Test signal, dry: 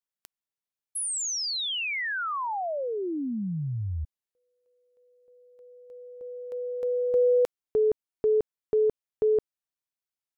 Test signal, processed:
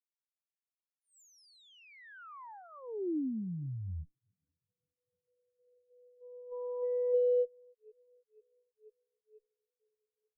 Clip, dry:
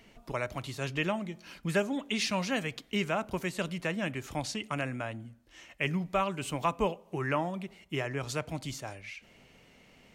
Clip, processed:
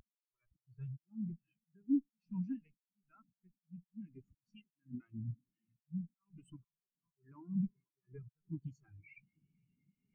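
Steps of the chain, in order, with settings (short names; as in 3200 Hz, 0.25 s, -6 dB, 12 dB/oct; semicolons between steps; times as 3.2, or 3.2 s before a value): added harmonics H 8 -16 dB, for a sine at -17 dBFS; reverse; upward compressor, threshold -37 dBFS; reverse; bell 600 Hz -11.5 dB 0.63 oct; compressor 20:1, threshold -37 dBFS; high shelf 8400 Hz +11 dB; on a send: diffused feedback echo 0.495 s, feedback 79%, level -11.5 dB; on the sum: auto swell 0.236 s; spectral expander 4:1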